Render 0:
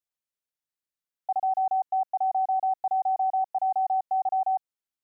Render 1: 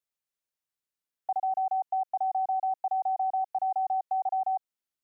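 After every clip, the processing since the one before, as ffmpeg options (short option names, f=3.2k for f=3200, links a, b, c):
-filter_complex "[0:a]acrossover=split=470|950[a][b][c];[a]acompressor=threshold=-48dB:ratio=4[d];[b]acompressor=threshold=-30dB:ratio=4[e];[c]acompressor=threshold=-37dB:ratio=4[f];[d][e][f]amix=inputs=3:normalize=0"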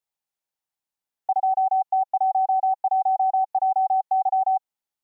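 -af "equalizer=f=820:w=3.4:g=9.5"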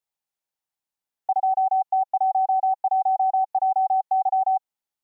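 -af anull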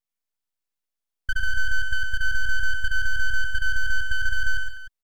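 -af "aeval=exprs='abs(val(0))':c=same,aecho=1:1:64|112|134|197|302:0.15|0.501|0.15|0.224|0.188"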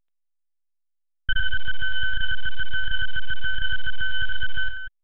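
-af "aeval=exprs='clip(val(0),-1,0.112)':c=same,volume=5.5dB" -ar 8000 -c:a pcm_alaw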